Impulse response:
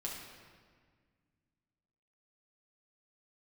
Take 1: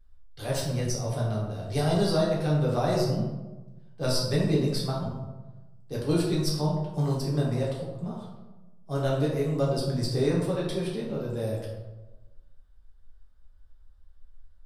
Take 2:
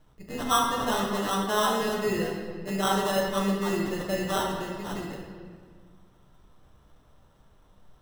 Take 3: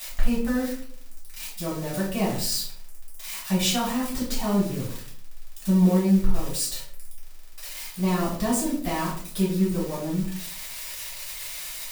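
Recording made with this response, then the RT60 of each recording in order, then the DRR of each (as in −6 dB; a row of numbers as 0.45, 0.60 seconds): 2; 1.1, 1.7, 0.55 seconds; −5.5, −3.0, −8.5 decibels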